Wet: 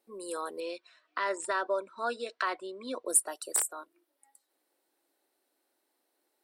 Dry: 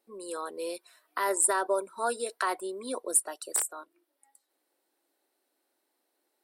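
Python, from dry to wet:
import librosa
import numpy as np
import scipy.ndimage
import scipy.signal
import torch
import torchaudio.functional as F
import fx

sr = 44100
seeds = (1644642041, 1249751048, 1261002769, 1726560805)

y = fx.cabinet(x, sr, low_hz=110.0, low_slope=12, high_hz=5700.0, hz=(110.0, 170.0, 410.0, 830.0, 2600.0, 4900.0), db=(7, -6, -7, -9, 3, -3), at=(0.6, 3.06))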